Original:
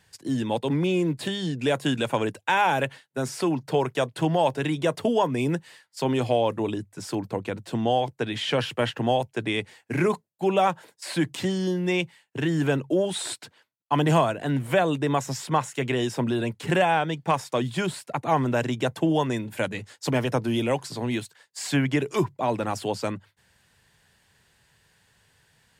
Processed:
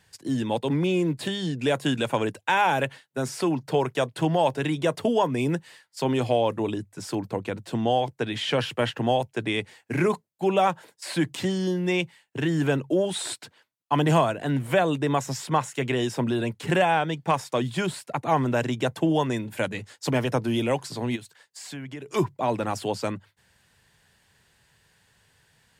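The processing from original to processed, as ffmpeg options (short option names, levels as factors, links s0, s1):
-filter_complex "[0:a]asplit=3[s0][s1][s2];[s0]afade=t=out:st=21.15:d=0.02[s3];[s1]acompressor=threshold=0.00891:ratio=2.5:attack=3.2:release=140:knee=1:detection=peak,afade=t=in:st=21.15:d=0.02,afade=t=out:st=22.12:d=0.02[s4];[s2]afade=t=in:st=22.12:d=0.02[s5];[s3][s4][s5]amix=inputs=3:normalize=0"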